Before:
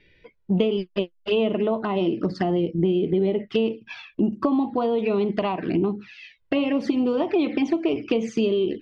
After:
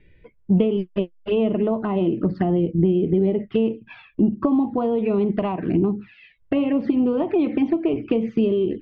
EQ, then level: distance through air 380 m; bass shelf 200 Hz +9.5 dB; 0.0 dB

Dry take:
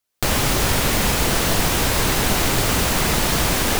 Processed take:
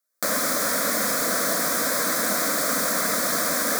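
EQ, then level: high-pass 290 Hz 12 dB/octave; static phaser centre 570 Hz, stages 8; 0.0 dB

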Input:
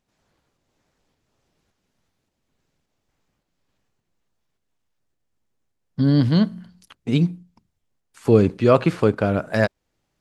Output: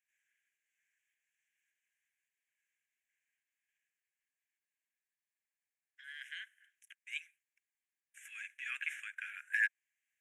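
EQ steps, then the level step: rippled Chebyshev high-pass 1.6 kHz, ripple 3 dB; Butterworth band-stop 4.5 kHz, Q 1.1; treble shelf 2.2 kHz -7.5 dB; +1.5 dB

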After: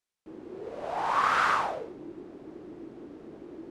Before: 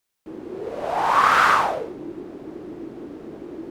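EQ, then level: low-pass 9.7 kHz 12 dB/octave; -8.5 dB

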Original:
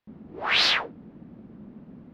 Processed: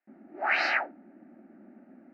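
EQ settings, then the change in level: dynamic bell 850 Hz, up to +5 dB, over -46 dBFS; band-pass 330–3100 Hz; static phaser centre 690 Hz, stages 8; +1.5 dB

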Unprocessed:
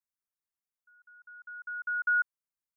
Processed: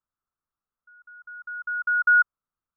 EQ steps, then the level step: resonant low-pass 1.3 kHz, resonance Q 5; tilt EQ -3 dB/octave; +1.0 dB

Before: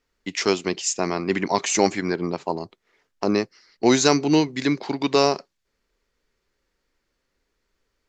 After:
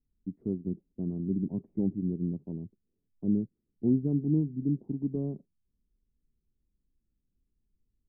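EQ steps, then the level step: four-pole ladder low-pass 290 Hz, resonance 25%; bass shelf 180 Hz +7 dB; 0.0 dB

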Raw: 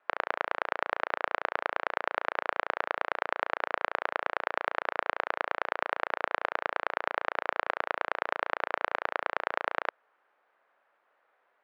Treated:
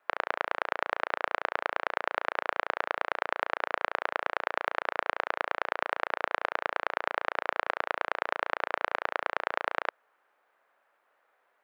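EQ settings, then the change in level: treble shelf 5.6 kHz +6.5 dB; 0.0 dB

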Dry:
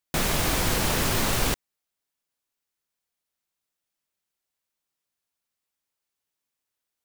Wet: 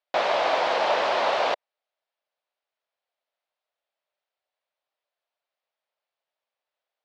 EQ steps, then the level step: low-pass 4.2 kHz 24 dB/octave; dynamic bell 930 Hz, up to +4 dB, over -43 dBFS, Q 2.1; resonant high-pass 610 Hz, resonance Q 3.5; 0.0 dB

